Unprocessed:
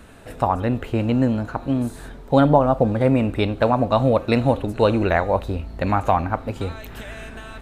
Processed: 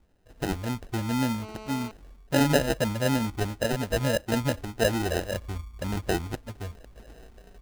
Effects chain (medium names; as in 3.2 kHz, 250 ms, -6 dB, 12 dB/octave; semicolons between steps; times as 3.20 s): expander on every frequency bin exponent 1.5; 5.27–6.03 s: peaking EQ 820 Hz -8.5 dB 0.33 oct; sample-and-hold 39×; 1.42–1.91 s: mobile phone buzz -37 dBFS; trim -5.5 dB